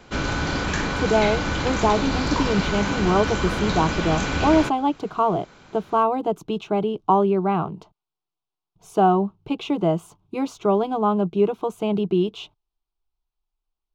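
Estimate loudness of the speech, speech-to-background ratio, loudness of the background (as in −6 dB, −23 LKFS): −23.0 LKFS, 2.0 dB, −25.0 LKFS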